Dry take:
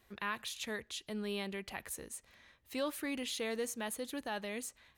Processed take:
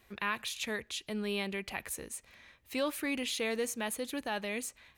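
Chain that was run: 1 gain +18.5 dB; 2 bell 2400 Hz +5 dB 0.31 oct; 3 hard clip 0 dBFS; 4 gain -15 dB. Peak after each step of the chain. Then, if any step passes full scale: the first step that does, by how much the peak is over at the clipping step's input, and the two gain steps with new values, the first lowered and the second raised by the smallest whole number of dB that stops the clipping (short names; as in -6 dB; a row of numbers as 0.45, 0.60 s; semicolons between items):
-6.0, -5.0, -5.0, -20.0 dBFS; no overload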